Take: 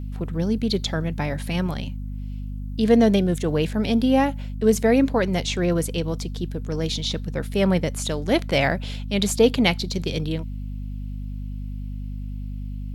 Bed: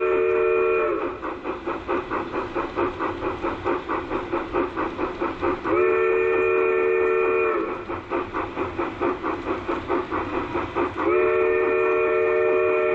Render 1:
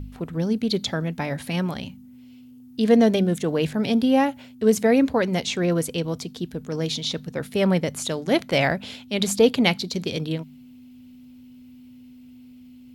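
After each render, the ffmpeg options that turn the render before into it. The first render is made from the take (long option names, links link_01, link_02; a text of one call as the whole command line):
ffmpeg -i in.wav -af "bandreject=frequency=50:width_type=h:width=4,bandreject=frequency=100:width_type=h:width=4,bandreject=frequency=150:width_type=h:width=4,bandreject=frequency=200:width_type=h:width=4" out.wav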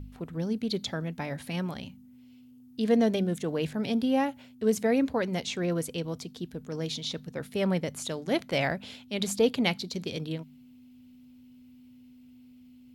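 ffmpeg -i in.wav -af "volume=-7dB" out.wav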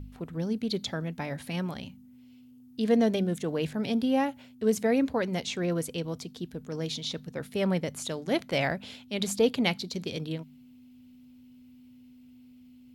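ffmpeg -i in.wav -af anull out.wav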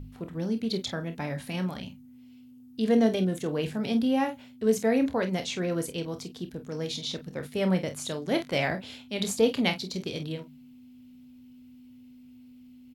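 ffmpeg -i in.wav -af "aecho=1:1:27|48:0.335|0.266" out.wav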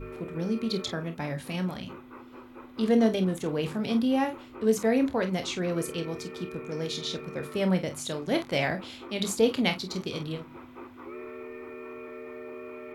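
ffmpeg -i in.wav -i bed.wav -filter_complex "[1:a]volume=-21.5dB[link_01];[0:a][link_01]amix=inputs=2:normalize=0" out.wav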